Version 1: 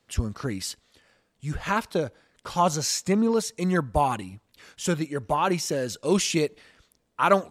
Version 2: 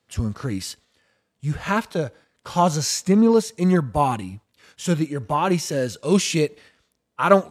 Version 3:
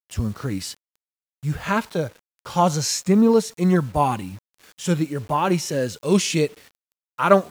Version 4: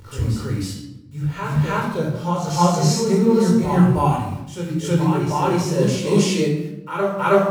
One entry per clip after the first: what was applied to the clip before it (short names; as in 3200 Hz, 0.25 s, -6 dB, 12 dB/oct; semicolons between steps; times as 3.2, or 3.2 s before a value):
gate -49 dBFS, range -7 dB; HPF 48 Hz; harmonic-percussive split harmonic +9 dB; gain -2 dB
bit-crush 8-bit
reverse echo 0.317 s -6 dB; shoebox room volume 3200 m³, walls furnished, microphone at 4.5 m; detuned doubles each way 28 cents